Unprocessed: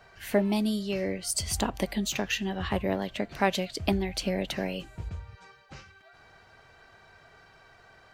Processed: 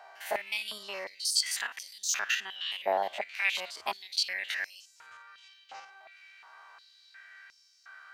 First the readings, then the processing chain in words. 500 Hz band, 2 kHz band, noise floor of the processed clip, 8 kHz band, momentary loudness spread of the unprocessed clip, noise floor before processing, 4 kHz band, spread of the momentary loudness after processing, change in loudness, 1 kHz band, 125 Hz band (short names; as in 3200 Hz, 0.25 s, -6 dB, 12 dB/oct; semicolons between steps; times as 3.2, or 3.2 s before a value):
-7.5 dB, +3.0 dB, -63 dBFS, +1.0 dB, 14 LU, -57 dBFS, +3.0 dB, 22 LU, -2.0 dB, -1.5 dB, under -30 dB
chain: stepped spectrum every 50 ms; stepped high-pass 2.8 Hz 770–5500 Hz